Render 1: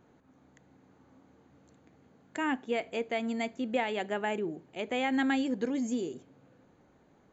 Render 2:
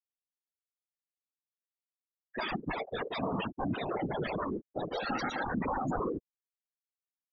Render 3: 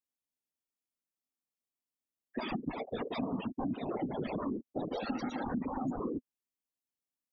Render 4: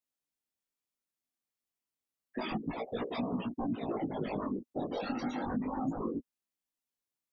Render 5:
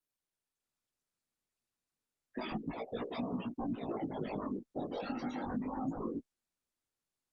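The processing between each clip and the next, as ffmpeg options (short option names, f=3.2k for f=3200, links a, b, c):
-af "aeval=exprs='0.119*sin(PI/2*7.08*val(0)/0.119)':c=same,afftfilt=real='re*gte(hypot(re,im),0.2)':imag='im*gte(hypot(re,im),0.2)':win_size=1024:overlap=0.75,afftfilt=real='hypot(re,im)*cos(2*PI*random(0))':imag='hypot(re,im)*sin(2*PI*random(1))':win_size=512:overlap=0.75,volume=-4dB"
-af "equalizer=f=250:t=o:w=0.67:g=10,equalizer=f=1.6k:t=o:w=0.67:g=-8,equalizer=f=4k:t=o:w=0.67:g=-4,acompressor=threshold=-32dB:ratio=6"
-af "flanger=delay=16.5:depth=4.4:speed=0.3,volume=3.5dB"
-af "volume=-3dB" -ar 48000 -c:a libopus -b:a 32k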